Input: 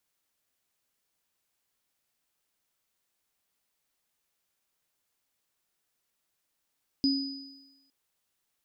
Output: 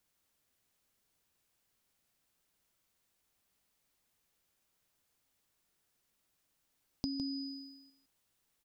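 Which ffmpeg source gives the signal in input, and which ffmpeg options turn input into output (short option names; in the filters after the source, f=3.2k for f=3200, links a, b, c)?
-f lavfi -i "aevalsrc='0.0841*pow(10,-3*t/0.99)*sin(2*PI*273*t)+0.0501*pow(10,-3*t/1.2)*sin(2*PI*4970*t)':d=0.86:s=44100"
-af "lowshelf=f=290:g=7,acompressor=threshold=-36dB:ratio=6,aecho=1:1:158:0.398"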